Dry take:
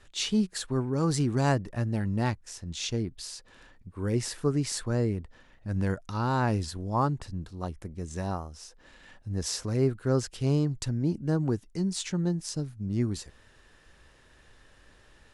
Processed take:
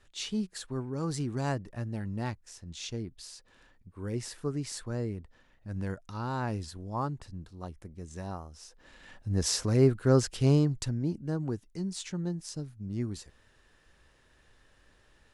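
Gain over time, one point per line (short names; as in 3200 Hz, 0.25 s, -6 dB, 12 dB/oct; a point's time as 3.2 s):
8.33 s -6.5 dB
9.34 s +3 dB
10.46 s +3 dB
11.25 s -5.5 dB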